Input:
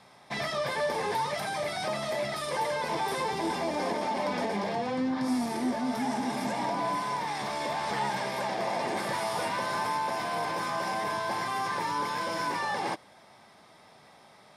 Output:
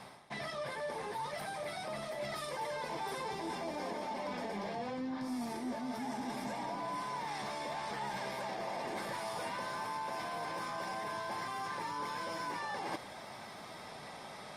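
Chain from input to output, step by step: reverse; compression 4:1, threshold -48 dBFS, peak gain reduction 18.5 dB; reverse; trim +7.5 dB; Opus 32 kbps 48 kHz

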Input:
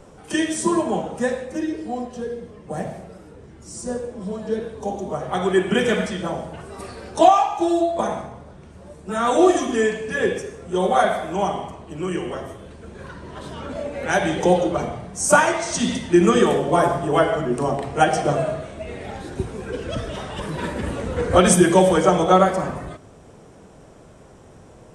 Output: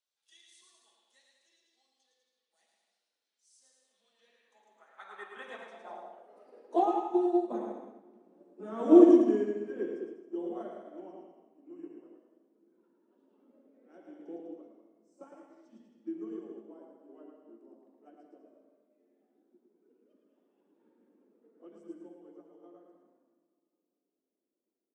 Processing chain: Doppler pass-by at 8.08 s, 22 m/s, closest 19 m; steep high-pass 210 Hz 48 dB/octave; treble shelf 2.5 kHz +10 dB; bouncing-ball echo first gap 110 ms, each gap 0.8×, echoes 5; on a send at -14 dB: reverberation RT60 2.6 s, pre-delay 4 ms; on the sum: band-pass sweep 4.1 kHz -> 300 Hz, 3.77–7.18 s; upward expansion 1.5:1, over -48 dBFS; trim +3.5 dB

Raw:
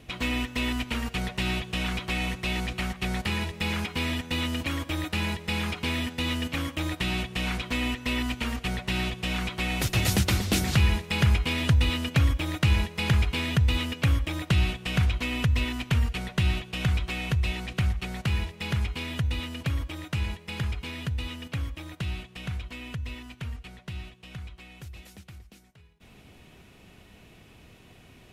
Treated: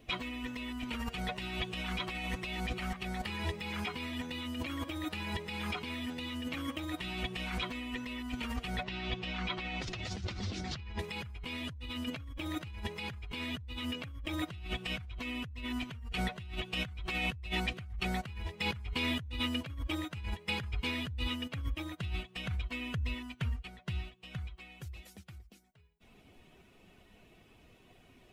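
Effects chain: expander on every frequency bin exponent 1.5; 8.83–10.99 s: low-pass 5.7 kHz 24 dB/octave; peak limiter -23.5 dBFS, peak gain reduction 10.5 dB; compressor with a negative ratio -41 dBFS, ratio -1; trim +3 dB

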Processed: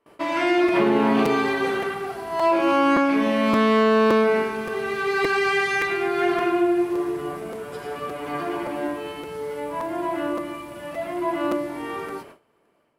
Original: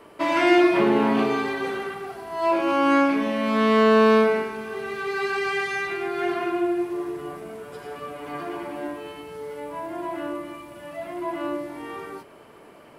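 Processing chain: compression, threshold -19 dBFS, peak gain reduction 7 dB; gate with hold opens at -36 dBFS; level rider gain up to 7 dB; crackling interface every 0.57 s, samples 256, repeat, from 0.68 s; trim -2.5 dB

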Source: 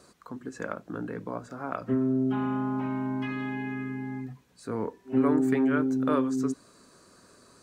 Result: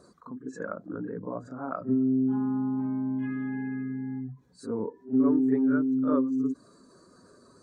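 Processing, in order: spectral contrast enhancement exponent 1.6; peaking EQ 2.7 kHz -11.5 dB 0.52 oct; reverse echo 39 ms -9.5 dB

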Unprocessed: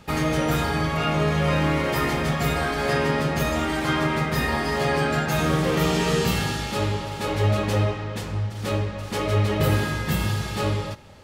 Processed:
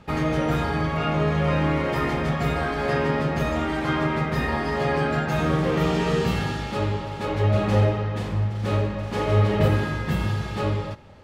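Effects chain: low-pass 2.2 kHz 6 dB/octave; 7.50–9.68 s: reverse bouncing-ball echo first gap 40 ms, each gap 1.1×, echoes 5

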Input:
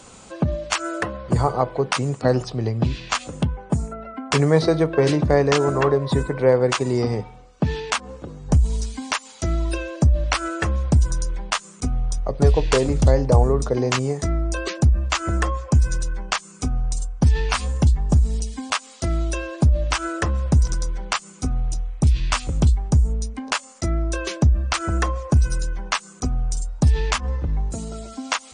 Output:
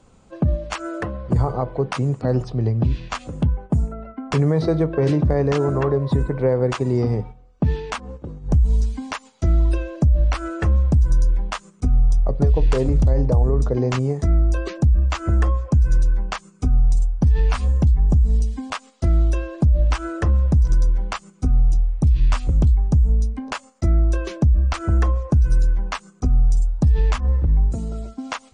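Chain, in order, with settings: gate -36 dBFS, range -8 dB; tilt EQ -2.5 dB/octave; peak limiter -6 dBFS, peak gain reduction 9 dB; trim -3.5 dB

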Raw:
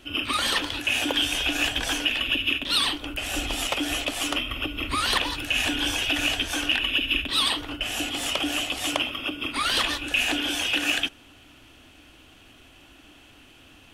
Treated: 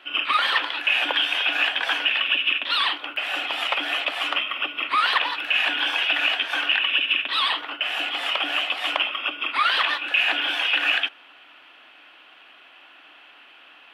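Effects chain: high-pass 1 kHz 12 dB/octave; treble shelf 12 kHz +8.5 dB; in parallel at +3 dB: peak limiter -15.5 dBFS, peak gain reduction 7 dB; on the sum: distance through air 440 m; trim +3.5 dB

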